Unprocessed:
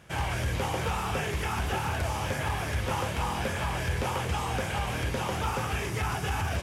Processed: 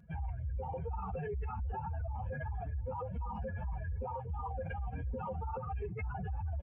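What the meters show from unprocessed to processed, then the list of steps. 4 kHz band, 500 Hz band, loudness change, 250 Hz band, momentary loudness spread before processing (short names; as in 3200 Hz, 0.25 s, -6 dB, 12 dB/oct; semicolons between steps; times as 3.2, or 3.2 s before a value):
under -35 dB, -8.5 dB, -9.5 dB, -11.5 dB, 1 LU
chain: spectral contrast raised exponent 3.3; comb 4.2 ms, depth 70%; outdoor echo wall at 180 m, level -30 dB; limiter -29.5 dBFS, peak gain reduction 10.5 dB; gain -2.5 dB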